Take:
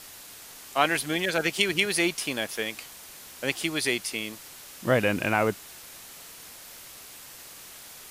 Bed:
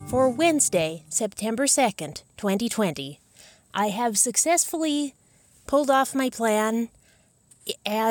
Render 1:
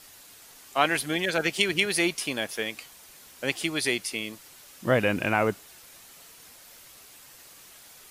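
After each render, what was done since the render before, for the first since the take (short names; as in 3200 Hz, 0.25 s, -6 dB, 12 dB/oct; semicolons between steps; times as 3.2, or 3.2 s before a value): denoiser 6 dB, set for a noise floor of -46 dBFS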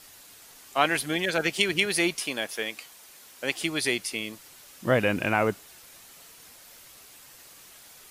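2.2–3.57 low shelf 150 Hz -11.5 dB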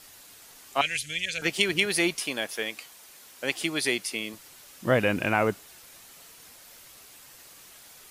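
0.81–1.42 EQ curve 110 Hz 0 dB, 180 Hz -11 dB, 350 Hz -23 dB, 500 Hz -13 dB, 930 Hz -30 dB, 2400 Hz +3 dB, 4600 Hz -2 dB, 6900 Hz +6 dB, 15000 Hz -13 dB; 3.63–4.34 HPF 130 Hz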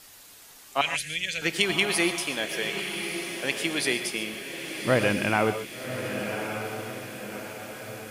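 diffused feedback echo 1.144 s, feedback 51%, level -7 dB; non-linear reverb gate 0.16 s rising, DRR 10 dB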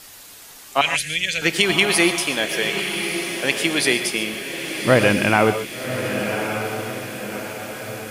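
gain +7.5 dB; limiter -2 dBFS, peak gain reduction 2.5 dB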